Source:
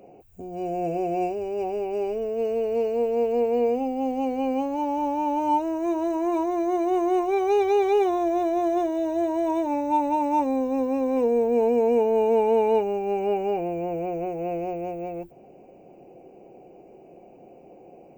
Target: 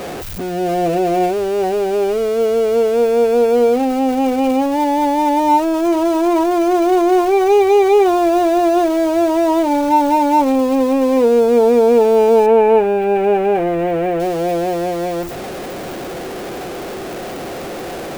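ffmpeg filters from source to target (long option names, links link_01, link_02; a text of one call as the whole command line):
ffmpeg -i in.wav -filter_complex "[0:a]aeval=exprs='val(0)+0.5*0.0282*sgn(val(0))':channel_layout=same,asettb=1/sr,asplit=3[link_01][link_02][link_03];[link_01]atrim=end=12.464[link_04];[link_02]atrim=start=12.46:end=14.2,asetpts=PTS-STARTPTS,afade=type=in:duration=0.004:curve=qsin,afade=type=out:start_time=1.736:duration=0.004:curve=qsin,highshelf=frequency=3300:width_type=q:width=1.5:gain=-11[link_05];[link_03]atrim=start=14.196[link_06];[link_04][link_05]acrossfade=duration=0.004:curve1=hsin:curve2=qsin[link_07];[link_07][link_06]acrossfade=duration=0.004:curve1=qsin:curve2=hsin,volume=8.5dB" out.wav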